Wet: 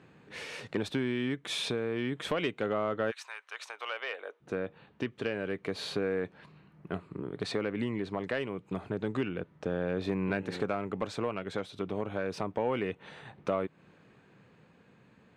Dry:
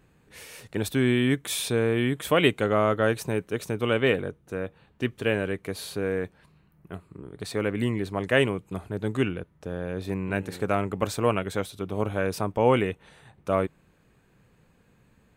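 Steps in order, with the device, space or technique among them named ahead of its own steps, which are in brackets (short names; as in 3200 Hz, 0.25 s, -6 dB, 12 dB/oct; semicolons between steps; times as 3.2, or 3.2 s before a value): AM radio (BPF 140–4400 Hz; compressor 5:1, threshold -32 dBFS, peak gain reduction 15.5 dB; soft clip -22 dBFS, distortion -22 dB; tremolo 0.3 Hz, depth 29%); 3.1–4.4 HPF 1200 Hz -> 500 Hz 24 dB/oct; gain +5.5 dB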